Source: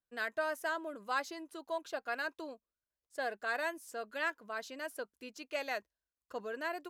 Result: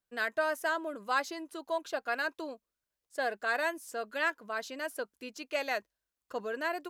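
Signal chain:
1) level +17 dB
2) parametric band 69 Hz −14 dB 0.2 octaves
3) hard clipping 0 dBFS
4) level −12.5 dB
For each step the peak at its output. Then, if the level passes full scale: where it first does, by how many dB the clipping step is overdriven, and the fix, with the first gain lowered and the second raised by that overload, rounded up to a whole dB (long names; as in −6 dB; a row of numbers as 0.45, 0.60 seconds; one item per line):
−5.5, −5.5, −5.5, −18.0 dBFS
no step passes full scale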